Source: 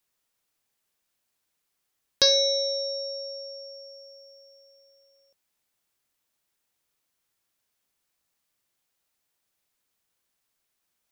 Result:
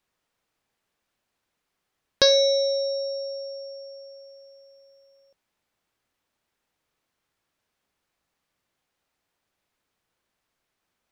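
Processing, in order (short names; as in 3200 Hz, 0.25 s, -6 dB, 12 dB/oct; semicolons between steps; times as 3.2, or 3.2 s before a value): LPF 2100 Hz 6 dB/oct; gain +6.5 dB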